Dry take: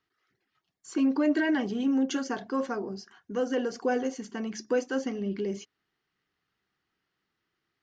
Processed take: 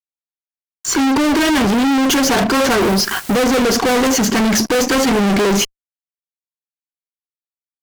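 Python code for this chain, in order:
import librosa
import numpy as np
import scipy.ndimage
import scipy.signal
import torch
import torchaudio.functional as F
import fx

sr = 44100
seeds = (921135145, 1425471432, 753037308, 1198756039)

y = fx.rider(x, sr, range_db=4, speed_s=0.5)
y = fx.quant_dither(y, sr, seeds[0], bits=10, dither='triangular', at=(2.78, 3.45))
y = fx.fuzz(y, sr, gain_db=49.0, gate_db=-58.0)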